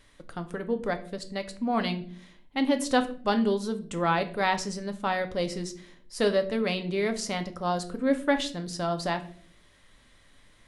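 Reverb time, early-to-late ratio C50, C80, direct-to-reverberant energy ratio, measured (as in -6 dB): 0.50 s, 14.5 dB, 18.0 dB, 7.0 dB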